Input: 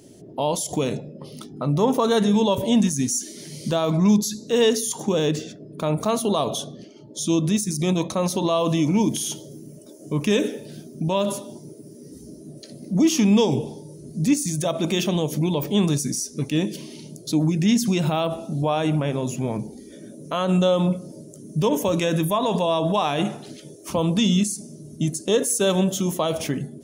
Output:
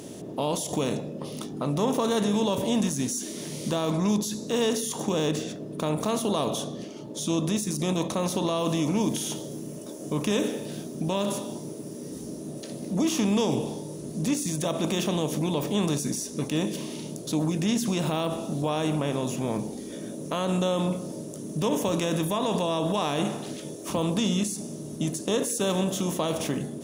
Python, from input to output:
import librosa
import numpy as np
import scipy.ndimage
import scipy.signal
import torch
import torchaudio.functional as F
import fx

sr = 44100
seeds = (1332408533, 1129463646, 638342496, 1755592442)

y = fx.bin_compress(x, sr, power=0.6)
y = y * 10.0 ** (-9.0 / 20.0)